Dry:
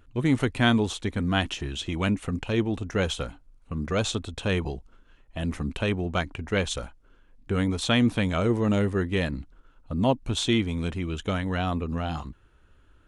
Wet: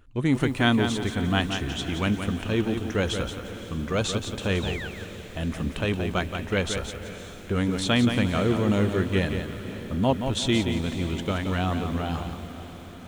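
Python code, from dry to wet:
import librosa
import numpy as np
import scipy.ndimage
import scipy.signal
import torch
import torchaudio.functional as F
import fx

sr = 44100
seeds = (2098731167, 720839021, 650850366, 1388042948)

y = fx.spec_paint(x, sr, seeds[0], shape='fall', start_s=4.62, length_s=0.26, low_hz=1400.0, high_hz=4000.0, level_db=-37.0)
y = fx.echo_diffused(y, sr, ms=539, feedback_pct=67, wet_db=-14.0)
y = fx.echo_crushed(y, sr, ms=175, feedback_pct=35, bits=8, wet_db=-7.0)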